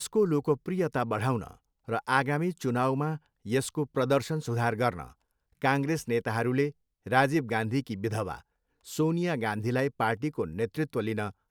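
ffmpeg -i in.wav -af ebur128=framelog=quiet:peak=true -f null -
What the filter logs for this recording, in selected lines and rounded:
Integrated loudness:
  I:         -29.3 LUFS
  Threshold: -39.6 LUFS
Loudness range:
  LRA:         1.9 LU
  Threshold: -49.6 LUFS
  LRA low:   -30.8 LUFS
  LRA high:  -28.9 LUFS
True peak:
  Peak:       -8.5 dBFS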